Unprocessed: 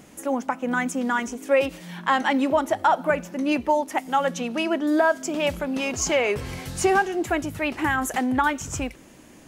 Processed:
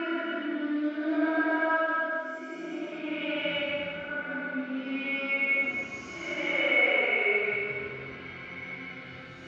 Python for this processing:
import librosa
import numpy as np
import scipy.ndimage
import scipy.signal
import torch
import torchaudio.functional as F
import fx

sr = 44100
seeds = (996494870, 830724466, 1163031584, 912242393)

p1 = fx.peak_eq(x, sr, hz=330.0, db=3.5, octaves=1.0)
p2 = fx.quant_companded(p1, sr, bits=4)
p3 = p1 + (p2 * librosa.db_to_amplitude(-9.0))
p4 = fx.paulstretch(p3, sr, seeds[0], factor=4.6, window_s=0.25, from_s=4.69)
p5 = fx.cabinet(p4, sr, low_hz=150.0, low_slope=12, high_hz=3600.0, hz=(760.0, 1400.0, 2200.0), db=(-6, 10, 8))
p6 = fx.comb_fb(p5, sr, f0_hz=730.0, decay_s=0.17, harmonics='all', damping=0.0, mix_pct=80)
y = p6 + fx.echo_feedback(p6, sr, ms=171, feedback_pct=59, wet_db=-12, dry=0)